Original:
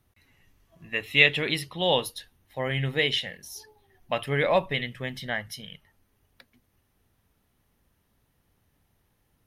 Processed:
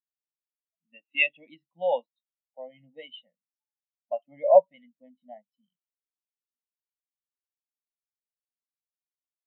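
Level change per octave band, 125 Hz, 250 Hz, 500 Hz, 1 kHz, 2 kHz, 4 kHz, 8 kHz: under -30 dB, under -15 dB, +3.0 dB, +0.5 dB, -7.0 dB, under -10 dB, under -35 dB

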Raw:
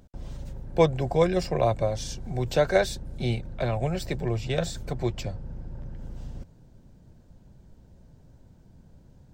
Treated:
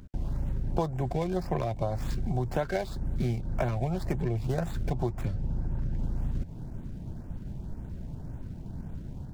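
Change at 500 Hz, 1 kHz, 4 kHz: -8.0, -4.5, -12.0 dB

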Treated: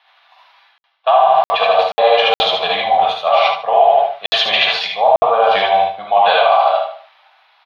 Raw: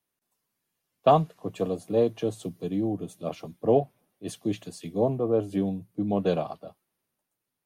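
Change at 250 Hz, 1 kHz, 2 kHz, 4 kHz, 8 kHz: -13.5 dB, +20.5 dB, +29.0 dB, +29.5 dB, n/a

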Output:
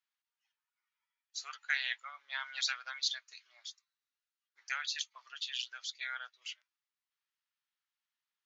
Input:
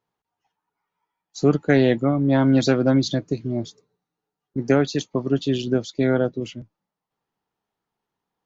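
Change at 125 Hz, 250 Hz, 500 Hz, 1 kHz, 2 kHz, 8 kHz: under -40 dB, under -40 dB, under -40 dB, -15.5 dB, -5.5 dB, n/a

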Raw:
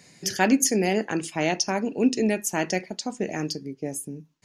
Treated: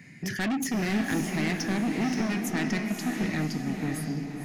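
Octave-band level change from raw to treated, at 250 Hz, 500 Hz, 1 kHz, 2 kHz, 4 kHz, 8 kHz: -1.5, -9.5, -6.5, -1.5, -5.5, -10.5 dB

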